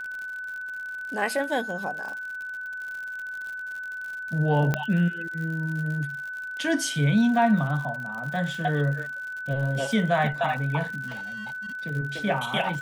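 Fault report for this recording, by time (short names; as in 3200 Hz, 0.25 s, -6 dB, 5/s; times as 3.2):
crackle 78/s -34 dBFS
tone 1500 Hz -32 dBFS
4.74 pop -11 dBFS
11.07–11.75 clipped -32 dBFS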